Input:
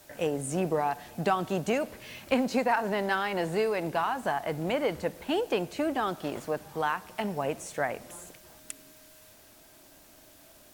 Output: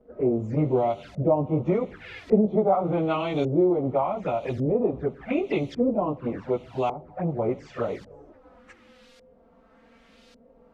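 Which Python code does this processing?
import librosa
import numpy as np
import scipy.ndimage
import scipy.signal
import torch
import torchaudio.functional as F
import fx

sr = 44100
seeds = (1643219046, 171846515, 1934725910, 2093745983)

y = fx.pitch_bins(x, sr, semitones=-3.5)
y = fx.env_flanger(y, sr, rest_ms=5.2, full_db=-30.0)
y = fx.filter_lfo_lowpass(y, sr, shape='saw_up', hz=0.87, low_hz=450.0, high_hz=4700.0, q=1.3)
y = y * librosa.db_to_amplitude(7.0)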